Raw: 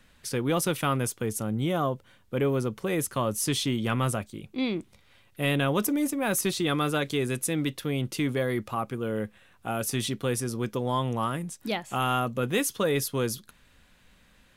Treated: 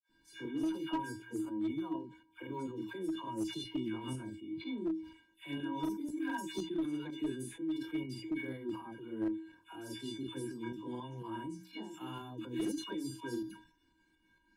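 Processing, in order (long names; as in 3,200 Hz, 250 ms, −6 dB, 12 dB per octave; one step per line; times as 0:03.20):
tuned comb filter 320 Hz, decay 0.27 s, harmonics odd, mix 100%
downward compressor 16 to 1, threshold −44 dBFS, peak gain reduction 13 dB
high-shelf EQ 5,300 Hz −11.5 dB
all-pass dispersion lows, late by 115 ms, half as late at 1,000 Hz
shaped tremolo saw up 4.1 Hz, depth 55%
low-shelf EQ 390 Hz +9.5 dB
mains-hum notches 60/120/180 Hz
granular cloud 251 ms, grains 14 per second, spray 36 ms, pitch spread up and down by 0 semitones
asymmetric clip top −43.5 dBFS
level that may fall only so fast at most 110 dB per second
level +13 dB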